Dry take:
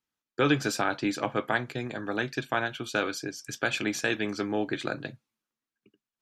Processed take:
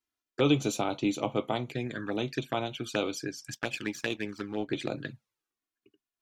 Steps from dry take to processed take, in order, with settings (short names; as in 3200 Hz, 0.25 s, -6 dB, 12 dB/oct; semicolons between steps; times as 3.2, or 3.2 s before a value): 3.54–4.7 power-law curve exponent 1.4; envelope flanger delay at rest 2.9 ms, full sweep at -27.5 dBFS; gain +1 dB